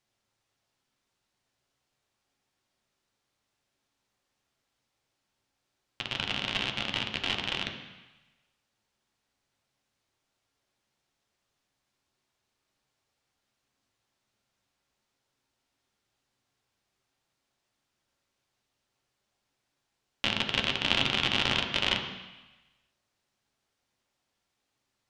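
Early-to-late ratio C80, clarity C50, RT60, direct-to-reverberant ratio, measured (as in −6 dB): 8.5 dB, 6.5 dB, 1.1 s, 2.0 dB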